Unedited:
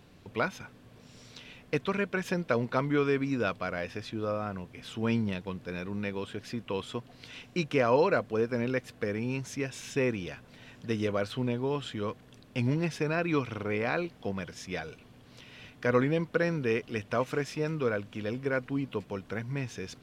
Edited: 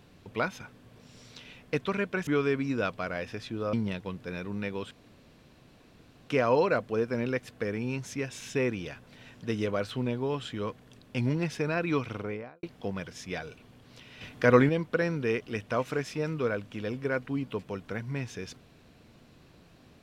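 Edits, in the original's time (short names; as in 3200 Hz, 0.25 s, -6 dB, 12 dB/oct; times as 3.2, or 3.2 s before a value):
2.27–2.89 cut
4.35–5.14 cut
6.32–7.7 room tone
13.52–14.04 studio fade out
15.62–16.1 gain +5.5 dB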